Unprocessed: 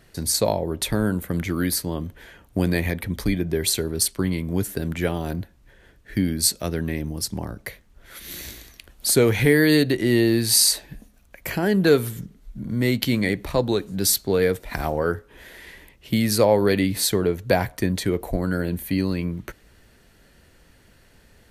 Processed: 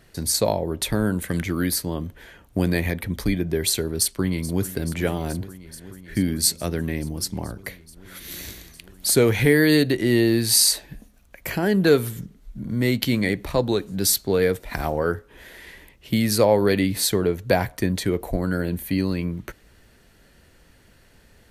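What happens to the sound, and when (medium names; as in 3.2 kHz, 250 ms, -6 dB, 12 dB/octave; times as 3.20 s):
1.19–1.42 s: time-frequency box 1.5–11 kHz +8 dB
3.92–4.71 s: echo throw 430 ms, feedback 85%, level -16 dB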